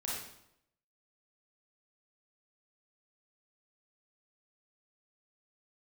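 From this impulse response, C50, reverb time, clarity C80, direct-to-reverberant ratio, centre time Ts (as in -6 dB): -1.0 dB, 0.80 s, 3.5 dB, -6.0 dB, 66 ms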